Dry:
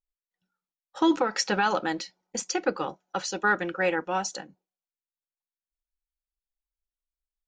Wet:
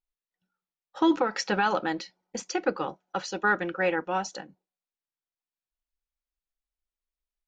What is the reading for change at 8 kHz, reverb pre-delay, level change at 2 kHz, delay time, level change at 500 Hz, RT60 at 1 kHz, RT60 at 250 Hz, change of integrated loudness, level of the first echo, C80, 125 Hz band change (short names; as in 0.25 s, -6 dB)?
-6.5 dB, none, -0.5 dB, none, 0.0 dB, none, none, -0.5 dB, none, none, 0.0 dB